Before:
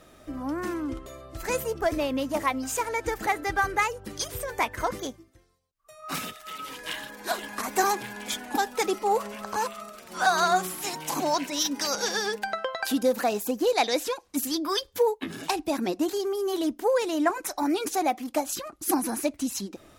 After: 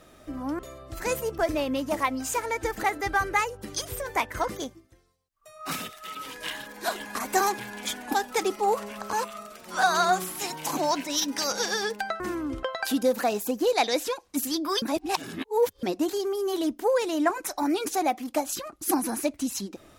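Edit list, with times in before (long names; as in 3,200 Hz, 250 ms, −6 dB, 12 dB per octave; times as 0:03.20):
0:00.59–0:01.02: move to 0:12.63
0:14.82–0:15.83: reverse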